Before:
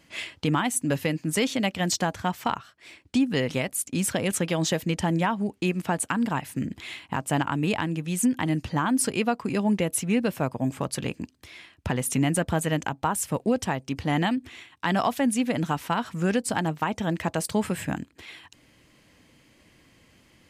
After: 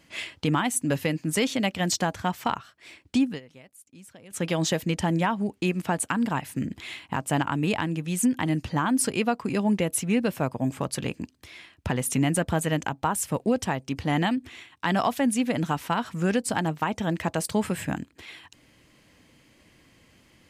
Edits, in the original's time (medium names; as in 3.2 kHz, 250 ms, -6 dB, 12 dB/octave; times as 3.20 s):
3.25–4.45 s: dip -22.5 dB, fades 0.15 s